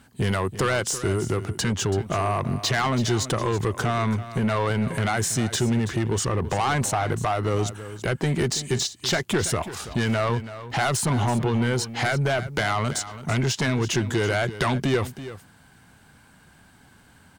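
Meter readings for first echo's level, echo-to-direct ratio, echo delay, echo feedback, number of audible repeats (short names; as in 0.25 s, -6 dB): -13.5 dB, -13.5 dB, 0.331 s, no steady repeat, 1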